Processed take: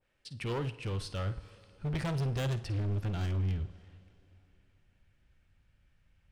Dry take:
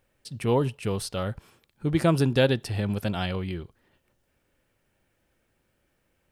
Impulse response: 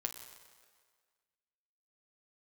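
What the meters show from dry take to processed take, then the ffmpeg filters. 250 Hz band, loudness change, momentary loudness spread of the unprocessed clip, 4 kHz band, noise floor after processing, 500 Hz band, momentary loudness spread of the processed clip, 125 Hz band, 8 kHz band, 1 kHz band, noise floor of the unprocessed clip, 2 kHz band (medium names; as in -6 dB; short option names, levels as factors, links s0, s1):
-12.0 dB, -8.5 dB, 13 LU, -10.0 dB, -71 dBFS, -14.0 dB, 9 LU, -4.0 dB, -11.0 dB, -10.5 dB, -73 dBFS, -10.0 dB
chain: -filter_complex "[0:a]lowpass=2800,asubboost=boost=10.5:cutoff=120,crystalizer=i=7:c=0,asoftclip=type=hard:threshold=0.0794,asplit=2[s0][s1];[1:a]atrim=start_sample=2205,asetrate=22491,aresample=44100,adelay=52[s2];[s1][s2]afir=irnorm=-1:irlink=0,volume=0.158[s3];[s0][s3]amix=inputs=2:normalize=0,adynamicequalizer=threshold=0.00562:dfrequency=1600:dqfactor=0.7:tfrequency=1600:tqfactor=0.7:attack=5:release=100:ratio=0.375:range=2:mode=cutabove:tftype=highshelf,volume=0.376"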